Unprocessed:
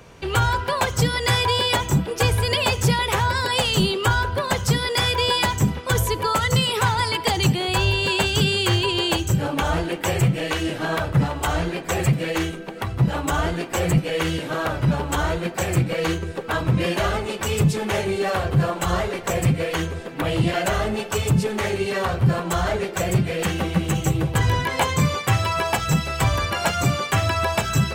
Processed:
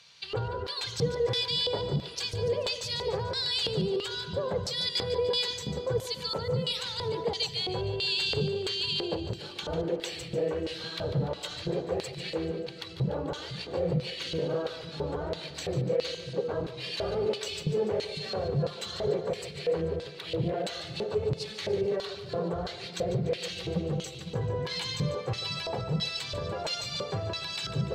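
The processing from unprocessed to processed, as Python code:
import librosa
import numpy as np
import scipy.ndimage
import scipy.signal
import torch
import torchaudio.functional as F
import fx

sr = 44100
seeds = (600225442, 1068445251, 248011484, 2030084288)

p1 = fx.over_compress(x, sr, threshold_db=-28.0, ratio=-1.0)
p2 = x + (p1 * librosa.db_to_amplitude(-1.0))
p3 = fx.low_shelf_res(p2, sr, hz=210.0, db=9.5, q=1.5)
p4 = fx.filter_lfo_bandpass(p3, sr, shape='square', hz=1.5, low_hz=460.0, high_hz=4200.0, q=4.1)
p5 = fx.echo_split(p4, sr, split_hz=320.0, low_ms=503, high_ms=146, feedback_pct=52, wet_db=-12.0)
y = p5 * librosa.db_to_amplitude(-1.0)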